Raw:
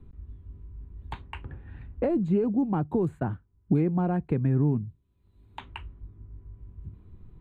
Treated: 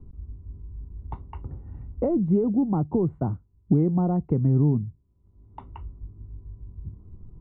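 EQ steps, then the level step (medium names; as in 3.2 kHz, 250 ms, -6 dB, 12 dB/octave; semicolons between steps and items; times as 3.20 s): Savitzky-Golay filter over 65 samples; bass shelf 320 Hz +4.5 dB; 0.0 dB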